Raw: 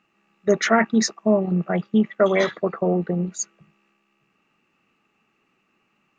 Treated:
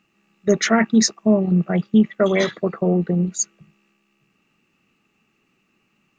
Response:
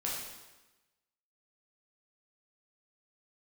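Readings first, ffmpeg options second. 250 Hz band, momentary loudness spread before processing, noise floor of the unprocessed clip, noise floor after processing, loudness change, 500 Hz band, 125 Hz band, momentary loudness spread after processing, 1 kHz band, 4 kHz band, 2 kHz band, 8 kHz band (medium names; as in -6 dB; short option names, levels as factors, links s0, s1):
+4.0 dB, 9 LU, -69 dBFS, -68 dBFS, +2.5 dB, 0.0 dB, +4.5 dB, 6 LU, -2.0 dB, +4.0 dB, 0.0 dB, no reading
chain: -af "equalizer=f=960:t=o:w=2.9:g=-9,volume=2.11"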